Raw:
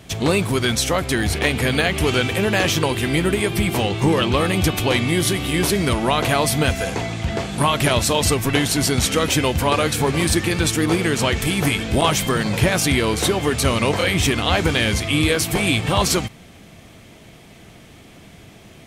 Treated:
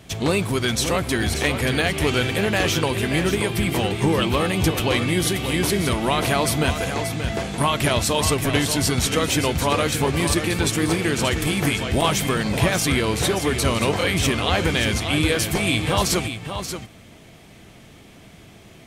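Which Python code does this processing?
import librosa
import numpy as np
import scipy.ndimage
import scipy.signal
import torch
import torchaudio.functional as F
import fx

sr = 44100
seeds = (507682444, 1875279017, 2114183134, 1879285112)

y = x + 10.0 ** (-8.5 / 20.0) * np.pad(x, (int(581 * sr / 1000.0), 0))[:len(x)]
y = y * librosa.db_to_amplitude(-2.5)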